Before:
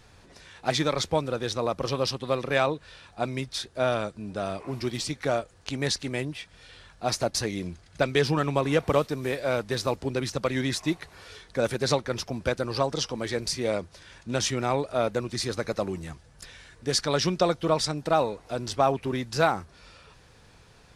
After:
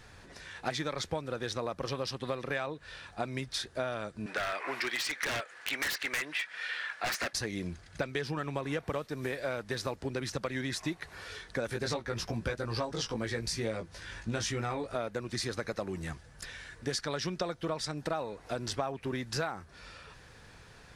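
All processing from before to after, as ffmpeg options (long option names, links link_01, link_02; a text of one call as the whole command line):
ffmpeg -i in.wav -filter_complex "[0:a]asettb=1/sr,asplit=3[link_01][link_02][link_03];[link_01]atrim=end=4.264[link_04];[link_02]atrim=start=4.26:end=7.33,asetpts=PTS-STARTPTS,afade=type=in:duration=0.004:curve=qsin,afade=type=out:start_time=3.066:duration=0.004:curve=qsin,highpass=420,equalizer=frequency=1900:width=0.68:gain=15,aeval=exprs='0.0891*(abs(mod(val(0)/0.0891+3,4)-2)-1)':channel_layout=same[link_05];[link_03]atrim=start=7.326[link_06];[link_04][link_05]acrossfade=duration=0.004:curve1=hsin:curve2=qsin[link_07];[link_07][link_06]acrossfade=duration=0.004:curve1=qsin:curve2=hsin,asettb=1/sr,asplit=3[link_08][link_09][link_10];[link_08]atrim=end=11.674[link_11];[link_09]atrim=start=11.67:end=14.96,asetpts=PTS-STARTPTS,afade=type=in:duration=0.004:curve=qsin,afade=type=out:start_time=3.286:duration=0.004:curve=qsin,lowshelf=frequency=120:gain=7,bandreject=frequency=620:width=16,asplit=2[link_12][link_13];[link_13]adelay=18,volume=-3dB[link_14];[link_12][link_14]amix=inputs=2:normalize=0,atrim=end_sample=145089[link_15];[link_10]atrim=start=14.956[link_16];[link_11][link_15]acrossfade=duration=0.004:curve1=hsin:curve2=qsin[link_17];[link_17][link_16]acrossfade=duration=0.004:curve1=qsin:curve2=hsin,equalizer=frequency=1700:width=2.3:gain=5.5,acompressor=threshold=-31dB:ratio=6" out.wav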